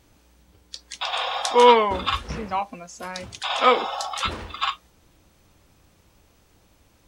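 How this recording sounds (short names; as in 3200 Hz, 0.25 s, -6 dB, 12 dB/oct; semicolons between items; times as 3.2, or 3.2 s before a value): noise floor -60 dBFS; spectral tilt -3.0 dB/oct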